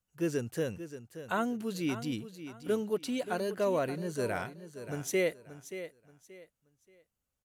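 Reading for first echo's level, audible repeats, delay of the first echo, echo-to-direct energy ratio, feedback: -12.0 dB, 3, 579 ms, -11.5 dB, 27%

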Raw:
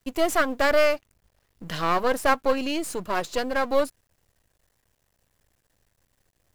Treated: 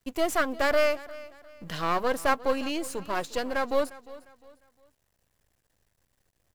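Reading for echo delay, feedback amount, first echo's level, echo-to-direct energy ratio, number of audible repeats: 353 ms, 34%, -19.0 dB, -18.5 dB, 2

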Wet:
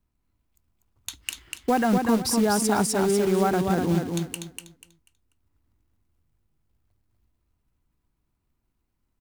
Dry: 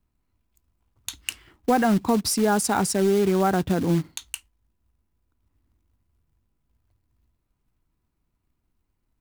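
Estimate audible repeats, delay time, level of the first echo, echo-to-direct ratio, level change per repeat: 3, 244 ms, -4.5 dB, -4.0 dB, -11.5 dB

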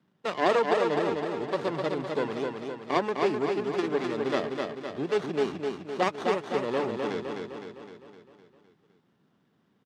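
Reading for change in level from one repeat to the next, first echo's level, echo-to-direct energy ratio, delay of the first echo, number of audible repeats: -5.0 dB, -4.0 dB, -2.5 dB, 256 ms, 6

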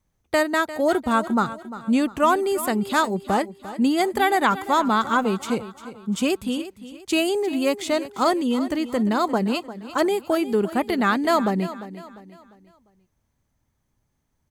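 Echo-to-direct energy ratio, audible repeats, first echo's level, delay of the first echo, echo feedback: -14.0 dB, 3, -14.5 dB, 349 ms, 39%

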